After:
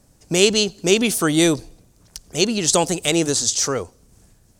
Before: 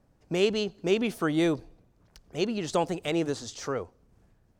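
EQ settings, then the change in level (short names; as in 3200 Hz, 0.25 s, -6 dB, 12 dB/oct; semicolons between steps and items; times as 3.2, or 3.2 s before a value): low shelf 490 Hz +4 dB; high shelf 3400 Hz +10 dB; bell 8400 Hz +12 dB 1.8 oct; +5.0 dB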